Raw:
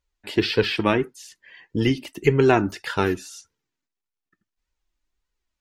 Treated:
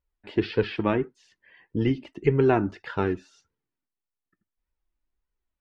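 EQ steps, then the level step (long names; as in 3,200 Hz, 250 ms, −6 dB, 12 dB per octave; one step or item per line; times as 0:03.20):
head-to-tape spacing loss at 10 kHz 30 dB
−2.0 dB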